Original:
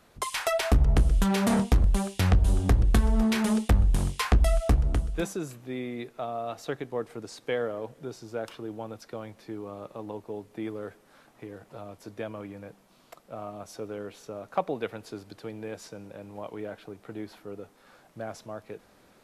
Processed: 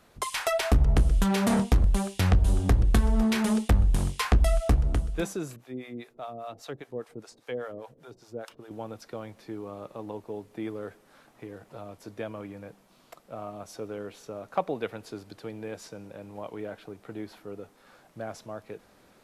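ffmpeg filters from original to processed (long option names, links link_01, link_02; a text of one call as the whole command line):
ffmpeg -i in.wav -filter_complex "[0:a]asettb=1/sr,asplit=3[link_01][link_02][link_03];[link_01]atrim=end=5.564[link_04];[link_02]atrim=start=5.56:end=8.71,asetpts=PTS-STARTPTS,afade=type=in:duration=0.004:curve=qsin,afade=type=out:start_time=3.146:duration=0.004:curve=qsin,acrossover=split=570[link_05][link_06];[link_05]aeval=exprs='val(0)*(1-1/2+1/2*cos(2*PI*5*n/s))':channel_layout=same[link_07];[link_06]aeval=exprs='val(0)*(1-1/2-1/2*cos(2*PI*5*n/s))':channel_layout=same[link_08];[link_07][link_08]amix=inputs=2:normalize=0[link_09];[link_03]atrim=start=8.706[link_10];[link_04][link_09]acrossfade=duration=0.004:curve1=hsin:curve2=qsin[link_11];[link_11][link_10]acrossfade=duration=0.004:curve1=qsin:curve2=hsin" out.wav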